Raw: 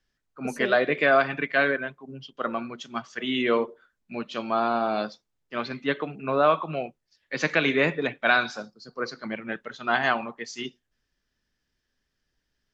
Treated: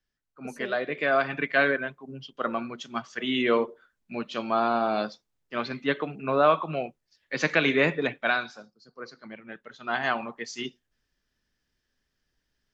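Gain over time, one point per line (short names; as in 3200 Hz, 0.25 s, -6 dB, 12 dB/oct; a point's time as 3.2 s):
0.89 s -7 dB
1.45 s 0 dB
8.14 s 0 dB
8.54 s -10 dB
9.48 s -10 dB
10.37 s 0 dB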